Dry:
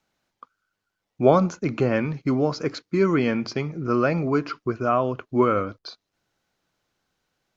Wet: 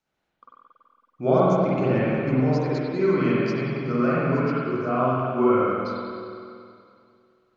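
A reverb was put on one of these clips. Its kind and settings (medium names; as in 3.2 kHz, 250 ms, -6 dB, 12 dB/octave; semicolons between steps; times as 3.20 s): spring tank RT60 2.4 s, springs 46/54 ms, chirp 50 ms, DRR -8.5 dB; trim -9 dB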